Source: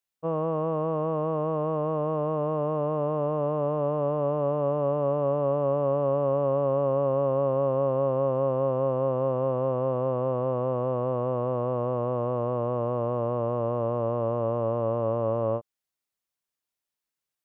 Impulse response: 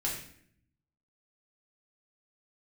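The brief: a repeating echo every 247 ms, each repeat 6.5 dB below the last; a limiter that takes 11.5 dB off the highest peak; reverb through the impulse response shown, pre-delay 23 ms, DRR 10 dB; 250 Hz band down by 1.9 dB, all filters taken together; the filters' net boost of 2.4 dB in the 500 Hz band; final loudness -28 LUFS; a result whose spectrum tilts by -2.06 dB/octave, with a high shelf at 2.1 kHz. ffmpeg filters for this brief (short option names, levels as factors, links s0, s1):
-filter_complex "[0:a]equalizer=f=250:t=o:g=-4,equalizer=f=500:t=o:g=4,highshelf=f=2100:g=-8,alimiter=level_in=1.19:limit=0.0631:level=0:latency=1,volume=0.841,aecho=1:1:247|494|741|988|1235|1482:0.473|0.222|0.105|0.0491|0.0231|0.0109,asplit=2[s0][s1];[1:a]atrim=start_sample=2205,adelay=23[s2];[s1][s2]afir=irnorm=-1:irlink=0,volume=0.188[s3];[s0][s3]amix=inputs=2:normalize=0,volume=1.58"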